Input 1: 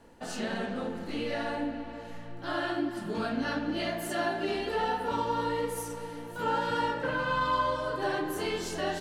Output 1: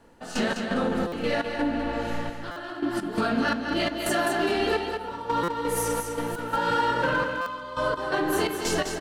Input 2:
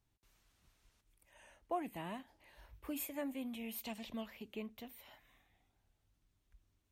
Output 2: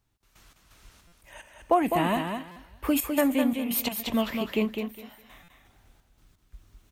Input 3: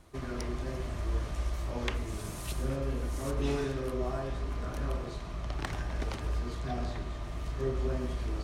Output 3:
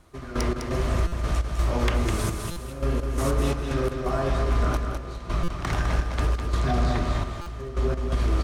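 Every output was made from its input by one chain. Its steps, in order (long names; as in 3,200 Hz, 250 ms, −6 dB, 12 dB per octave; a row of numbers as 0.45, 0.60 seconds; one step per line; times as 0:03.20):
parametric band 1,300 Hz +3.5 dB 0.44 octaves
downward compressor 6 to 1, threshold −34 dBFS
hard clipping −30 dBFS
gate pattern "..x.xx.x.xxxx." 85 BPM −12 dB
on a send: repeating echo 205 ms, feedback 20%, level −6 dB
on the sum: buffer that repeats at 0:01.07/0:02.51/0:05.43/0:07.41, samples 256, times 8
loudness normalisation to −27 LKFS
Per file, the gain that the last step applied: +12.5, +18.0, +13.5 decibels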